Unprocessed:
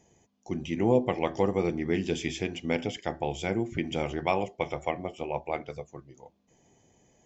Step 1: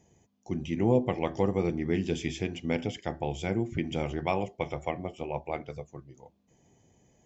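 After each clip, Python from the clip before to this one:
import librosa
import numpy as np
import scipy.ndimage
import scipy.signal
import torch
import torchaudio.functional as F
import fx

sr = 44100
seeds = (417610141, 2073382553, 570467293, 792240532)

y = fx.peak_eq(x, sr, hz=92.0, db=6.0, octaves=2.9)
y = y * 10.0 ** (-3.0 / 20.0)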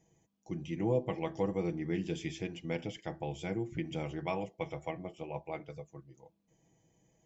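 y = x + 0.54 * np.pad(x, (int(6.2 * sr / 1000.0), 0))[:len(x)]
y = y * 10.0 ** (-7.5 / 20.0)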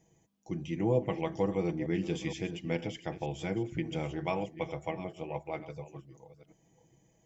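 y = fx.reverse_delay(x, sr, ms=466, wet_db=-13.5)
y = y * 10.0 ** (2.5 / 20.0)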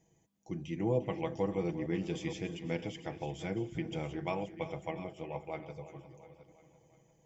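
y = fx.echo_feedback(x, sr, ms=350, feedback_pct=59, wet_db=-15.5)
y = y * 10.0 ** (-3.0 / 20.0)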